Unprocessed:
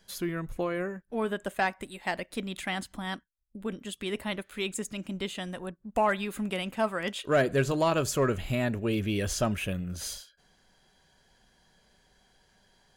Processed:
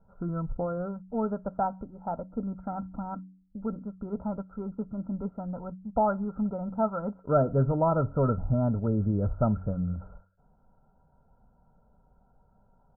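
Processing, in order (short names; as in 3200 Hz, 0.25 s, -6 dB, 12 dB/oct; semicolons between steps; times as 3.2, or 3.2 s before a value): rippled Chebyshev low-pass 1400 Hz, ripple 9 dB; low shelf 340 Hz +7.5 dB; comb 1.4 ms, depth 86%; de-hum 93.32 Hz, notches 3; gain +3 dB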